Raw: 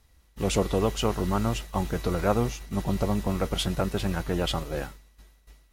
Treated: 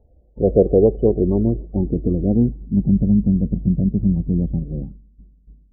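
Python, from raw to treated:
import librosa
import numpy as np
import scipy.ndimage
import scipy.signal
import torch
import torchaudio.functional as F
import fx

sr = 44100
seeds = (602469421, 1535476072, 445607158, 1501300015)

y = fx.filter_sweep_lowpass(x, sr, from_hz=570.0, to_hz=210.0, start_s=0.17, end_s=3.0, q=2.3)
y = fx.spec_topn(y, sr, count=32)
y = y * librosa.db_to_amplitude(6.5)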